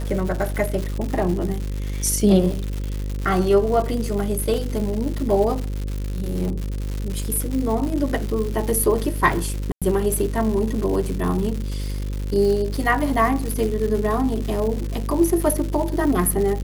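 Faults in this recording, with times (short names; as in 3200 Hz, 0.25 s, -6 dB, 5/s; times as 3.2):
buzz 50 Hz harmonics 11 -26 dBFS
crackle 220/s -26 dBFS
4.54 gap 2.8 ms
9.72–9.82 gap 96 ms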